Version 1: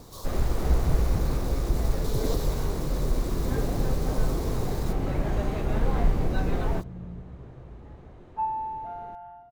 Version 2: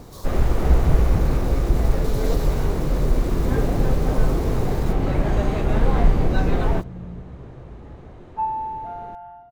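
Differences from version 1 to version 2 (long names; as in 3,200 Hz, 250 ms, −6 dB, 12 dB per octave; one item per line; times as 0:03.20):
first sound +6.5 dB
second sound +4.0 dB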